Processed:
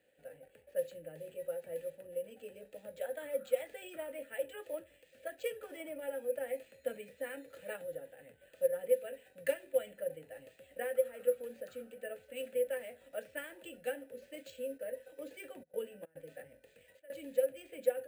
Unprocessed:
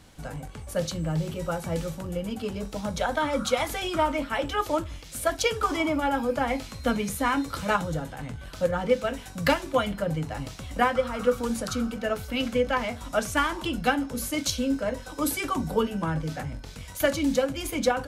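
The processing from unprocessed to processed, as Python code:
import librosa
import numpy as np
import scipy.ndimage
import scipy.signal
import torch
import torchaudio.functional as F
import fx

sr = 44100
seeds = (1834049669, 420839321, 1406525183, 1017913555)

y = fx.step_gate(x, sr, bpm=143, pattern='xxxxxx.xxx.xx', floor_db=-24.0, edge_ms=4.5, at=(14.77, 17.23), fade=0.02)
y = fx.vowel_filter(y, sr, vowel='e')
y = np.repeat(scipy.signal.resample_poly(y, 1, 4), 4)[:len(y)]
y = y * librosa.db_to_amplitude(-4.5)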